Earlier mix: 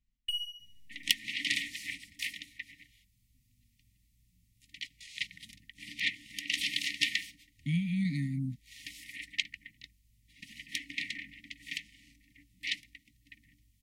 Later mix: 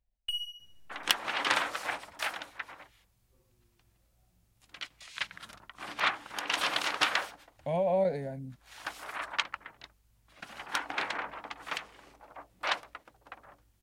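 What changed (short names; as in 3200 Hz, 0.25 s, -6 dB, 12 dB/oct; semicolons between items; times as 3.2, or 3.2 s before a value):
speech -8.0 dB; master: remove brick-wall FIR band-stop 310–1800 Hz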